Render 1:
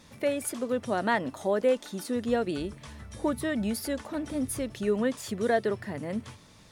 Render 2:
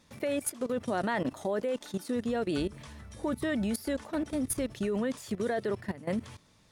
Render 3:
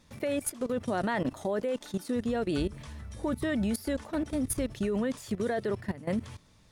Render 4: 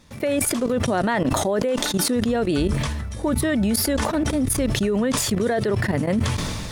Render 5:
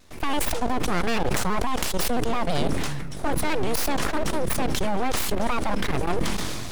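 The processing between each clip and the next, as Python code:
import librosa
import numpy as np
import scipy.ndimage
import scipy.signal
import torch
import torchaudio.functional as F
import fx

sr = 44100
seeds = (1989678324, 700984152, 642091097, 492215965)

y1 = fx.level_steps(x, sr, step_db=17)
y1 = F.gain(torch.from_numpy(y1), 4.5).numpy()
y2 = fx.low_shelf(y1, sr, hz=93.0, db=9.5)
y3 = fx.sustainer(y2, sr, db_per_s=24.0)
y3 = F.gain(torch.from_numpy(y3), 8.0).numpy()
y4 = np.abs(y3)
y4 = fx.vibrato_shape(y4, sr, shape='saw_down', rate_hz=6.0, depth_cents=100.0)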